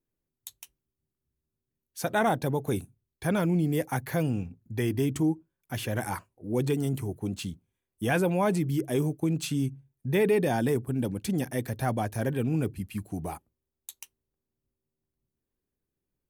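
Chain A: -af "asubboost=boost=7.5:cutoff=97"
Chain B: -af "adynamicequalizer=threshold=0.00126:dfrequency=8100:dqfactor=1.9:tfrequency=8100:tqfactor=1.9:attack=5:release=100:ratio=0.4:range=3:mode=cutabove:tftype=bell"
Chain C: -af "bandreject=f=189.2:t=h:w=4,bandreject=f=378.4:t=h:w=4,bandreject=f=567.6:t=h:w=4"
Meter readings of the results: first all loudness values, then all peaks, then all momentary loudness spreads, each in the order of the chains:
-27.5 LUFS, -29.0 LUFS, -29.5 LUFS; -15.0 dBFS, -13.5 dBFS, -13.5 dBFS; 10 LU, 14 LU, 14 LU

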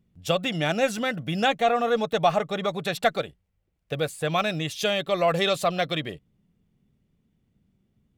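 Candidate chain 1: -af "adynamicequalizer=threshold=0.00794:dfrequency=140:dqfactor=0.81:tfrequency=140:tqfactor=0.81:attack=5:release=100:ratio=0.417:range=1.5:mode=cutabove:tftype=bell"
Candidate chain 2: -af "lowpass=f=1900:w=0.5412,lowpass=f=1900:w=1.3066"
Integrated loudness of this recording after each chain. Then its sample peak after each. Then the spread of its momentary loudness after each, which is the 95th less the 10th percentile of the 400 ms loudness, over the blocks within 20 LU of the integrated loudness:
-25.5 LUFS, -26.5 LUFS; -8.5 dBFS, -9.0 dBFS; 8 LU, 8 LU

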